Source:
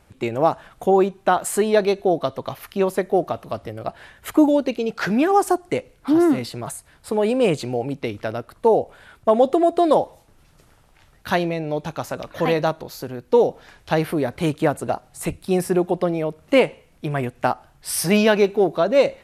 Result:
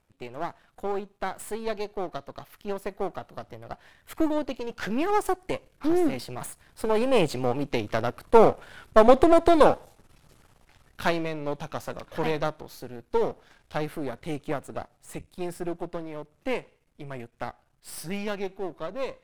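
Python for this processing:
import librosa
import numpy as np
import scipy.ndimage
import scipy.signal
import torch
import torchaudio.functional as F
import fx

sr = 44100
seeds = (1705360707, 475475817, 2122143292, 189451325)

y = np.where(x < 0.0, 10.0 ** (-12.0 / 20.0) * x, x)
y = fx.doppler_pass(y, sr, speed_mps=14, closest_m=21.0, pass_at_s=8.74)
y = y * 10.0 ** (3.5 / 20.0)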